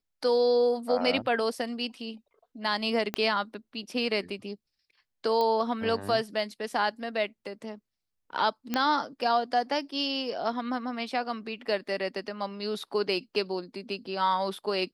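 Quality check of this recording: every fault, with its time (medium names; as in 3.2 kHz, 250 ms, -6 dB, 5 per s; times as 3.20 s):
3.14 s: pop -14 dBFS
5.41 s: pop -18 dBFS
8.74 s: pop -13 dBFS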